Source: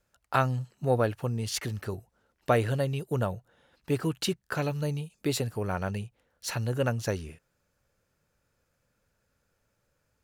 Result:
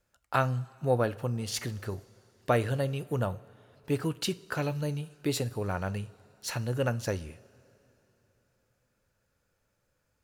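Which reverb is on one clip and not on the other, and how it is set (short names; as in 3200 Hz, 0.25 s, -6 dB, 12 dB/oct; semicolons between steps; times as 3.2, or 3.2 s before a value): two-slope reverb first 0.37 s, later 3.5 s, from -18 dB, DRR 13.5 dB; gain -1.5 dB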